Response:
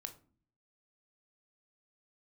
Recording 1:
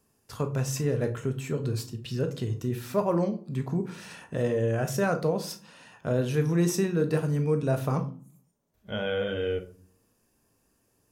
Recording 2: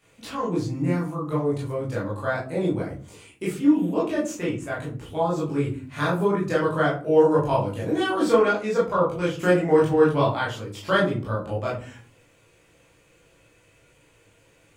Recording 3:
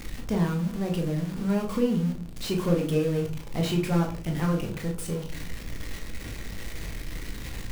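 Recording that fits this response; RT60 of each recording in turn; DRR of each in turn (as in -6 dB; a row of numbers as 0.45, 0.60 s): 1; 0.45, 0.40, 0.40 s; 7.0, -7.5, 1.0 dB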